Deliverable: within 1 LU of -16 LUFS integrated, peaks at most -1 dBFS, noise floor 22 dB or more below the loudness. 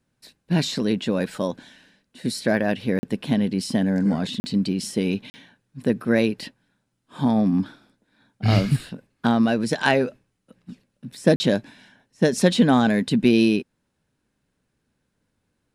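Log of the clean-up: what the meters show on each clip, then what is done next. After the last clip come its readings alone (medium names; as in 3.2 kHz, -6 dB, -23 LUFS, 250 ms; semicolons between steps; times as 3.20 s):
dropouts 4; longest dropout 40 ms; loudness -22.5 LUFS; peak level -3.0 dBFS; loudness target -16.0 LUFS
-> interpolate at 2.99/4.40/5.30/11.36 s, 40 ms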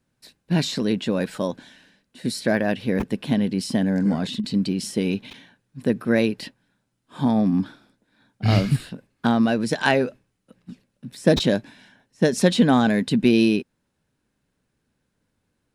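dropouts 0; loudness -22.0 LUFS; peak level -3.0 dBFS; loudness target -16.0 LUFS
-> trim +6 dB; peak limiter -1 dBFS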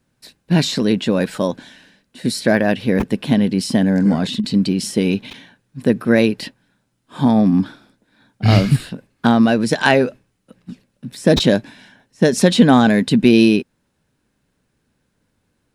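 loudness -16.5 LUFS; peak level -1.0 dBFS; noise floor -69 dBFS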